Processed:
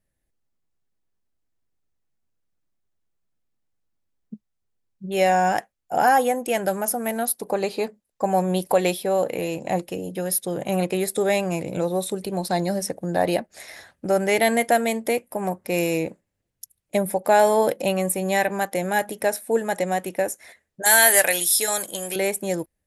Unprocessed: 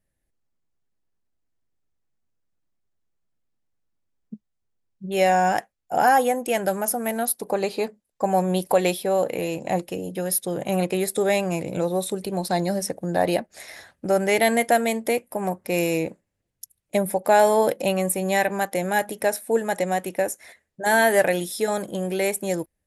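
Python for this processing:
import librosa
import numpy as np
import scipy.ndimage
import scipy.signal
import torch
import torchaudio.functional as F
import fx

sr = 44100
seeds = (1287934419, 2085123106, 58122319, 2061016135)

y = fx.tilt_eq(x, sr, slope=4.5, at=(20.82, 22.16))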